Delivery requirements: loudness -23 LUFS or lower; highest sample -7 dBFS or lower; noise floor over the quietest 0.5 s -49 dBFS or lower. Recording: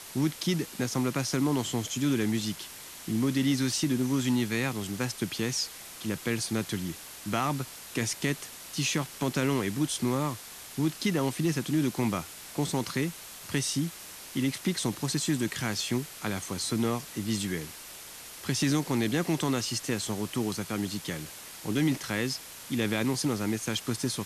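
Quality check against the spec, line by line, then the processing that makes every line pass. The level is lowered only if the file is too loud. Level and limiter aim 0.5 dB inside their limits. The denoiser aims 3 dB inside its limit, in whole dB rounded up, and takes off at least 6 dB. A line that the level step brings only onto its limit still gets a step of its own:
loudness -30.0 LUFS: OK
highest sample -16.5 dBFS: OK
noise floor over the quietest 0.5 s -45 dBFS: fail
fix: denoiser 7 dB, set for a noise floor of -45 dBFS

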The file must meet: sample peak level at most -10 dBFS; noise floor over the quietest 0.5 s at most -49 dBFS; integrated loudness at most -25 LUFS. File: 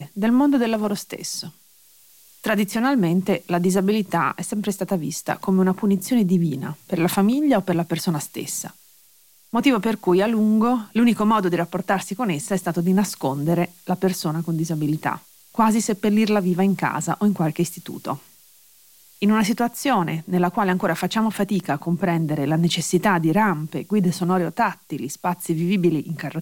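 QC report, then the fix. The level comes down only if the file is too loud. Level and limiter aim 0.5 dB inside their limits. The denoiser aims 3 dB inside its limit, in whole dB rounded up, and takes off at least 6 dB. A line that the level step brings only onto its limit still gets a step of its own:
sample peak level -6.0 dBFS: fail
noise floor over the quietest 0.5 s -54 dBFS: OK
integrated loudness -21.5 LUFS: fail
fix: gain -4 dB; limiter -10.5 dBFS

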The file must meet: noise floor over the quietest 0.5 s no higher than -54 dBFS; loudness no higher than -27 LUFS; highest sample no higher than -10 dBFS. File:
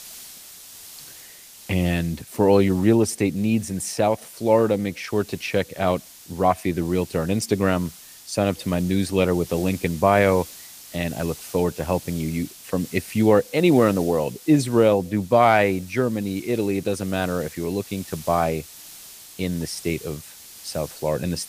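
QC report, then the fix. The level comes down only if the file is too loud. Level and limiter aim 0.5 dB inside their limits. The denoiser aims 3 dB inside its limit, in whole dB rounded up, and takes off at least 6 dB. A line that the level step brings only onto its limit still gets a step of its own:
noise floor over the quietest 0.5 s -44 dBFS: fail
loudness -22.5 LUFS: fail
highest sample -4.5 dBFS: fail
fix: denoiser 8 dB, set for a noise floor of -44 dBFS; gain -5 dB; limiter -10.5 dBFS

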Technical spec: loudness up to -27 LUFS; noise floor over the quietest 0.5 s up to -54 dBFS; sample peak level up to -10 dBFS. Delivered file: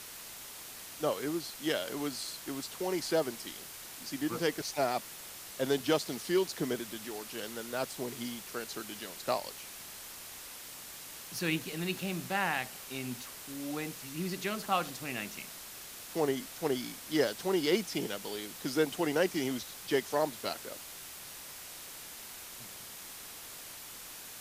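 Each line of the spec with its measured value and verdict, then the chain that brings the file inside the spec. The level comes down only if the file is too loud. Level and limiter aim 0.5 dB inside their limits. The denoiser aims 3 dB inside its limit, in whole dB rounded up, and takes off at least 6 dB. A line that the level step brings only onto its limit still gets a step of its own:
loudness -35.5 LUFS: OK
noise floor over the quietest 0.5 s -47 dBFS: fail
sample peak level -15.5 dBFS: OK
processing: denoiser 10 dB, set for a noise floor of -47 dBFS

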